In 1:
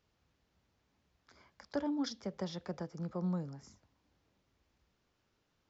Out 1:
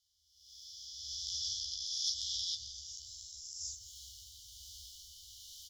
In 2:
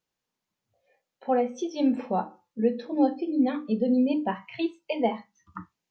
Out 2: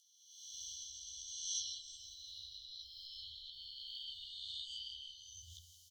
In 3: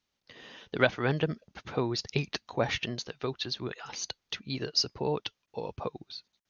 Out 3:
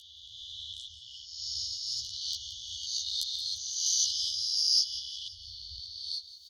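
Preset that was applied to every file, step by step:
spectral swells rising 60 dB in 2.55 s; recorder AGC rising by 25 dB/s; added harmonics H 2 -27 dB, 3 -12 dB, 4 -29 dB, 5 -22 dB, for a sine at -2 dBFS; tone controls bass -8 dB, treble +10 dB; rotary speaker horn 1.2 Hz; on a send: feedback echo 0.174 s, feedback 55%, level -14 dB; on the sum: chorus voices 6, 1.2 Hz, delay 14 ms, depth 3 ms; FFT band-reject 110–2900 Hz; mismatched tape noise reduction encoder only; gain -3.5 dB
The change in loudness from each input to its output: +0.5, -18.5, +2.0 LU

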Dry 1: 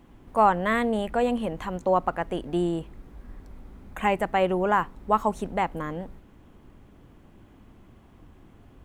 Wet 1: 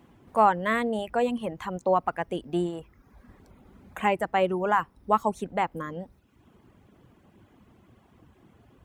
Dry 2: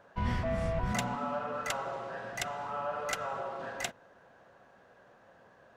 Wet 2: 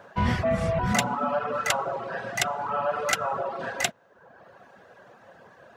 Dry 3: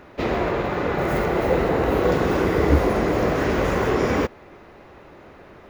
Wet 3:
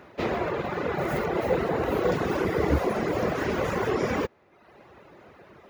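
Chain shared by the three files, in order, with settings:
HPF 83 Hz 12 dB/oct; reverb removal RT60 0.85 s; bell 280 Hz -3.5 dB 0.22 oct; match loudness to -27 LUFS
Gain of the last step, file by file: -0.5, +10.5, -3.0 dB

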